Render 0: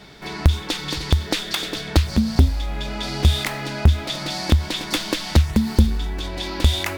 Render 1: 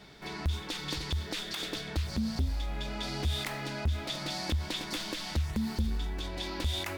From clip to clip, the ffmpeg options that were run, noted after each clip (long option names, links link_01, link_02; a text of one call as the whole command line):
ffmpeg -i in.wav -af "alimiter=limit=-14dB:level=0:latency=1:release=64,volume=-8.5dB" out.wav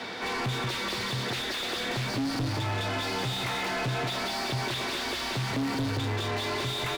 ffmpeg -i in.wav -filter_complex "[0:a]aecho=1:1:179:0.531,afreqshift=52,asplit=2[link_01][link_02];[link_02]highpass=frequency=720:poles=1,volume=32dB,asoftclip=type=tanh:threshold=-19dB[link_03];[link_01][link_03]amix=inputs=2:normalize=0,lowpass=frequency=2300:poles=1,volume=-6dB,volume=-3dB" out.wav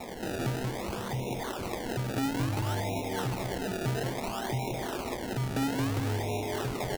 ffmpeg -i in.wav -af "aresample=8000,aresample=44100,asuperstop=centerf=1600:order=20:qfactor=0.97,acrusher=samples=28:mix=1:aa=0.000001:lfo=1:lforange=28:lforate=0.59" out.wav